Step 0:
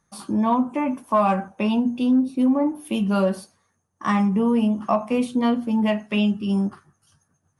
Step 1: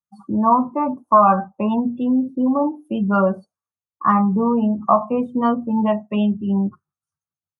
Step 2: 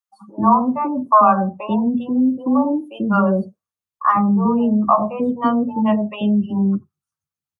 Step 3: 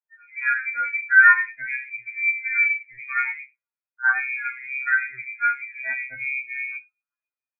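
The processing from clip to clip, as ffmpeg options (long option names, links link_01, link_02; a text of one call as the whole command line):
ffmpeg -i in.wav -af "lowpass=9200,afftdn=noise_reduction=35:noise_floor=-30,firequalizer=gain_entry='entry(160,0);entry(250,-4);entry(1300,7);entry(2100,-13);entry(7300,6)':delay=0.05:min_phase=1,volume=4dB" out.wav
ffmpeg -i in.wav -filter_complex "[0:a]acrossover=split=560[link_01][link_02];[link_01]adelay=90[link_03];[link_03][link_02]amix=inputs=2:normalize=0,volume=2dB" out.wav
ffmpeg -i in.wav -af "lowpass=frequency=2200:width_type=q:width=0.5098,lowpass=frequency=2200:width_type=q:width=0.6013,lowpass=frequency=2200:width_type=q:width=0.9,lowpass=frequency=2200:width_type=q:width=2.563,afreqshift=-2600,tremolo=f=65:d=0.333,afftfilt=real='re*2.45*eq(mod(b,6),0)':imag='im*2.45*eq(mod(b,6),0)':win_size=2048:overlap=0.75" out.wav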